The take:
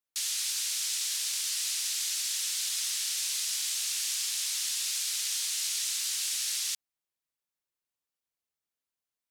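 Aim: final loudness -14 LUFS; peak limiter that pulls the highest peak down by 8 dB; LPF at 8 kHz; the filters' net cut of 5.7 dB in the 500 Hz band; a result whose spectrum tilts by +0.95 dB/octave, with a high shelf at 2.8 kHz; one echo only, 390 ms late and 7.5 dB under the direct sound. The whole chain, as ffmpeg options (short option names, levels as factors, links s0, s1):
-af "lowpass=8000,equalizer=f=500:t=o:g=-8.5,highshelf=f=2800:g=6,alimiter=limit=0.0708:level=0:latency=1,aecho=1:1:390:0.422,volume=5.62"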